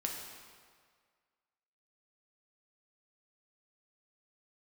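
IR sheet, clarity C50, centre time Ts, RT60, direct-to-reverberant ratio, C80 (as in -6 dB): 3.0 dB, 67 ms, 1.8 s, 0.0 dB, 4.5 dB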